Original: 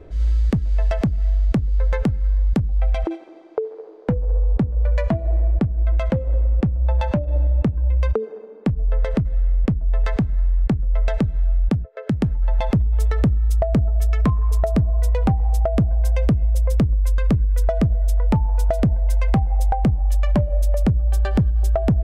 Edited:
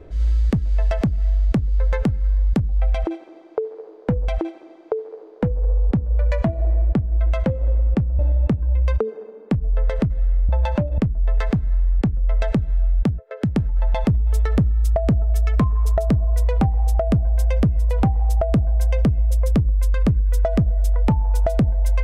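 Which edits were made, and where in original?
2.94–4.28 s: loop, 2 plays
6.85–7.34 s: move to 9.64 s
15.10–16.52 s: loop, 2 plays, crossfade 0.24 s

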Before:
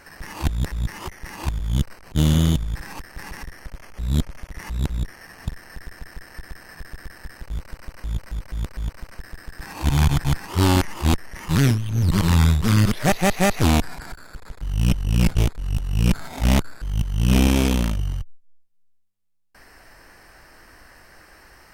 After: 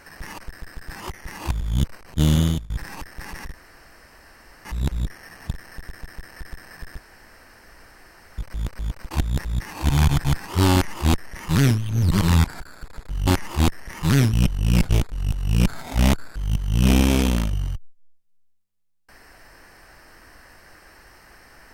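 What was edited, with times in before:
0.38–0.98 s: swap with 9.09–9.71 s
2.26–2.68 s: fade out equal-power, to -23 dB
3.52–4.63 s: room tone
6.96–8.36 s: room tone
10.73–11.79 s: copy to 14.79 s
12.44–13.96 s: delete

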